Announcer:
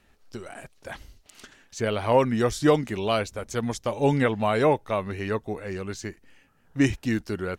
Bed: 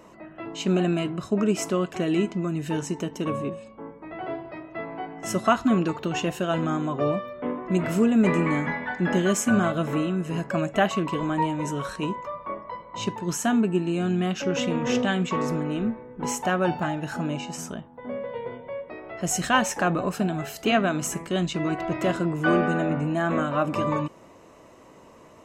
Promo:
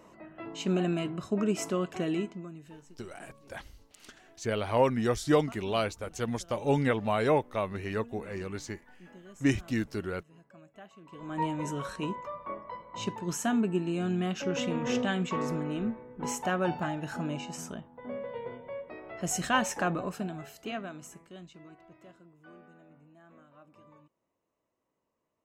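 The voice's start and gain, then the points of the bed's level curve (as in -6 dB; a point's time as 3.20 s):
2.65 s, -4.5 dB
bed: 2.08 s -5.5 dB
2.99 s -29 dB
10.98 s -29 dB
11.43 s -5.5 dB
19.82 s -5.5 dB
22.32 s -32.5 dB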